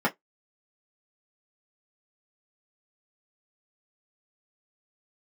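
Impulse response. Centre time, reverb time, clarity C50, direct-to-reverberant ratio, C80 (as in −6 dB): 10 ms, 0.15 s, 25.0 dB, −4.0 dB, 38.5 dB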